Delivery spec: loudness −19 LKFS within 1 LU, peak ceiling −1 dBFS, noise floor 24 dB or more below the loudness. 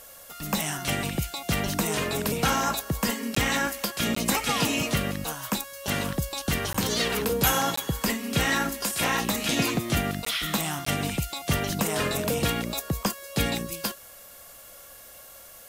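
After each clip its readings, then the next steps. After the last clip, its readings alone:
number of dropouts 6; longest dropout 14 ms; background noise floor −47 dBFS; target noise floor −51 dBFS; integrated loudness −26.5 LKFS; sample peak −9.5 dBFS; target loudness −19.0 LKFS
→ repair the gap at 0:03.35/0:04.15/0:06.73/0:07.76/0:10.25/0:10.85, 14 ms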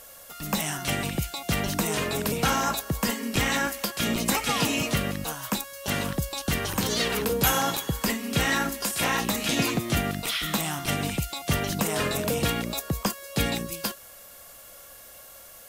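number of dropouts 0; background noise floor −47 dBFS; target noise floor −51 dBFS
→ broadband denoise 6 dB, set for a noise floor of −47 dBFS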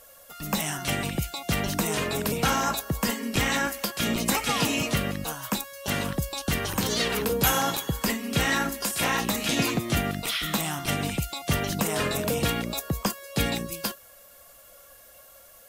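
background noise floor −52 dBFS; integrated loudness −26.5 LKFS; sample peak −9.5 dBFS; target loudness −19.0 LKFS
→ level +7.5 dB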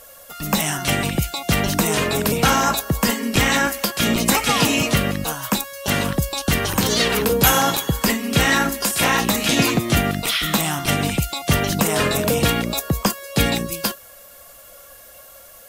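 integrated loudness −19.0 LKFS; sample peak −2.0 dBFS; background noise floor −44 dBFS

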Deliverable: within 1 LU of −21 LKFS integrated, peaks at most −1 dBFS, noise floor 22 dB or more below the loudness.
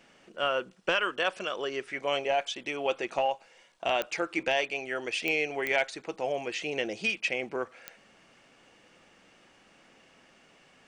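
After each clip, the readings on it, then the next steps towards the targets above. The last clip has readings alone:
number of clicks 4; integrated loudness −30.5 LKFS; sample peak −14.0 dBFS; target loudness −21.0 LKFS
→ click removal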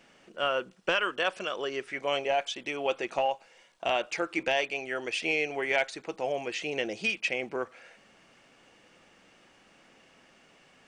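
number of clicks 0; integrated loudness −30.5 LKFS; sample peak −14.0 dBFS; target loudness −21.0 LKFS
→ level +9.5 dB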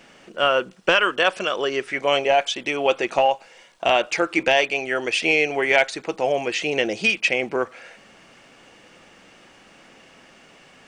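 integrated loudness −21.0 LKFS; sample peak −4.5 dBFS; background noise floor −51 dBFS

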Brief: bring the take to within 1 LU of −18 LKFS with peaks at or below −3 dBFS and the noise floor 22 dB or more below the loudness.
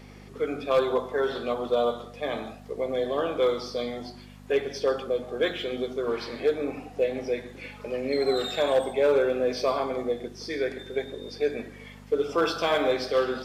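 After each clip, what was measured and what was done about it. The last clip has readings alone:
share of clipped samples 0.3%; peaks flattened at −15.5 dBFS; mains hum 50 Hz; hum harmonics up to 250 Hz; level of the hum −45 dBFS; integrated loudness −27.5 LKFS; sample peak −15.5 dBFS; target loudness −18.0 LKFS
→ clipped peaks rebuilt −15.5 dBFS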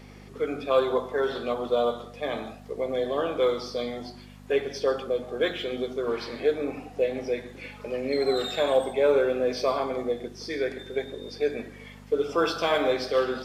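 share of clipped samples 0.0%; mains hum 50 Hz; hum harmonics up to 250 Hz; level of the hum −45 dBFS
→ hum removal 50 Hz, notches 5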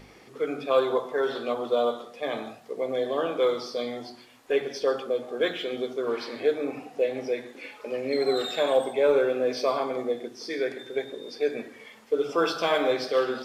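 mains hum none found; integrated loudness −27.5 LKFS; sample peak −10.5 dBFS; target loudness −18.0 LKFS
→ level +9.5 dB
brickwall limiter −3 dBFS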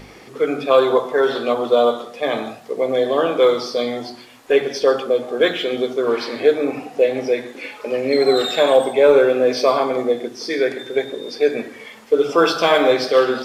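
integrated loudness −18.0 LKFS; sample peak −3.0 dBFS; background noise floor −42 dBFS

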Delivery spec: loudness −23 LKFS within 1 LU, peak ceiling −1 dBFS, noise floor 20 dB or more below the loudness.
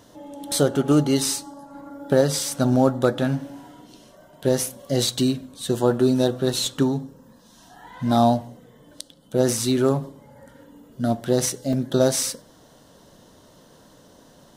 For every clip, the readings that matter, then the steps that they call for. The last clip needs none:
number of dropouts 1; longest dropout 1.9 ms; integrated loudness −22.0 LKFS; sample peak −5.0 dBFS; target loudness −23.0 LKFS
→ repair the gap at 0:11.73, 1.9 ms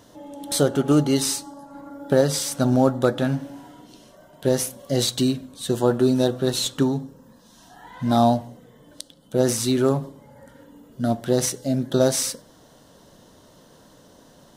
number of dropouts 0; integrated loudness −22.0 LKFS; sample peak −5.0 dBFS; target loudness −23.0 LKFS
→ level −1 dB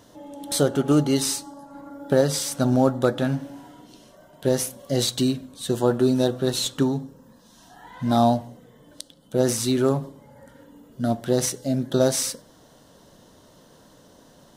integrated loudness −23.0 LKFS; sample peak −6.0 dBFS; background noise floor −54 dBFS

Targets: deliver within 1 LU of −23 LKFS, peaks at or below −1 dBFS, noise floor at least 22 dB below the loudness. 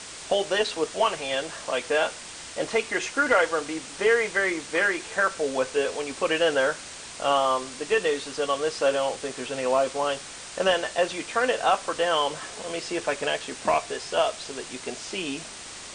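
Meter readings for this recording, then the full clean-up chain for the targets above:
background noise floor −41 dBFS; target noise floor −48 dBFS; integrated loudness −26.0 LKFS; sample peak −8.5 dBFS; target loudness −23.0 LKFS
→ noise reduction from a noise print 7 dB
level +3 dB

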